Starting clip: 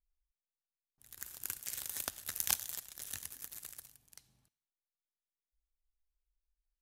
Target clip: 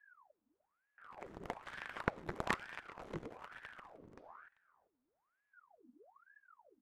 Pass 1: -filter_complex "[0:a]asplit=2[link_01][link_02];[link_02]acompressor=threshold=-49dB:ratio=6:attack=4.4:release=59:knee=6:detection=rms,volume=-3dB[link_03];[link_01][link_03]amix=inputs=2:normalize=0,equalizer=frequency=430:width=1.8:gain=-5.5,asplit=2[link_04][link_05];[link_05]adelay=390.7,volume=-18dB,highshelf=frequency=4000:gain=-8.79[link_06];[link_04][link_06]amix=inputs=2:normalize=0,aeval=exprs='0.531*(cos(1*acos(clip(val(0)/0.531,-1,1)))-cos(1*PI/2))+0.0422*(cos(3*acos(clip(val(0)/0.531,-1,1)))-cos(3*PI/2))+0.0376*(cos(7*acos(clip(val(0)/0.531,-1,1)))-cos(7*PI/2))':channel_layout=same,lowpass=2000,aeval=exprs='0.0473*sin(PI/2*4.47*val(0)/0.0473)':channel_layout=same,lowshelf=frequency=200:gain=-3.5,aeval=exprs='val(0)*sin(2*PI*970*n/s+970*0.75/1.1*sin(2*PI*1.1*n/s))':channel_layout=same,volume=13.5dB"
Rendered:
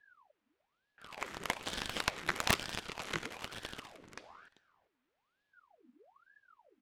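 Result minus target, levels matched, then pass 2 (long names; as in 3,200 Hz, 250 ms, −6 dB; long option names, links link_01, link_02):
downward compressor: peak gain reduction −8.5 dB; 500 Hz band −4.5 dB
-filter_complex "[0:a]asplit=2[link_01][link_02];[link_02]acompressor=threshold=-59dB:ratio=6:attack=4.4:release=59:knee=6:detection=rms,volume=-3dB[link_03];[link_01][link_03]amix=inputs=2:normalize=0,equalizer=frequency=430:width=1.8:gain=-5.5,asplit=2[link_04][link_05];[link_05]adelay=390.7,volume=-18dB,highshelf=frequency=4000:gain=-8.79[link_06];[link_04][link_06]amix=inputs=2:normalize=0,aeval=exprs='0.531*(cos(1*acos(clip(val(0)/0.531,-1,1)))-cos(1*PI/2))+0.0422*(cos(3*acos(clip(val(0)/0.531,-1,1)))-cos(3*PI/2))+0.0376*(cos(7*acos(clip(val(0)/0.531,-1,1)))-cos(7*PI/2))':channel_layout=same,lowpass=610,aeval=exprs='0.0473*sin(PI/2*4.47*val(0)/0.0473)':channel_layout=same,lowshelf=frequency=200:gain=-3.5,aeval=exprs='val(0)*sin(2*PI*970*n/s+970*0.75/1.1*sin(2*PI*1.1*n/s))':channel_layout=same,volume=13.5dB"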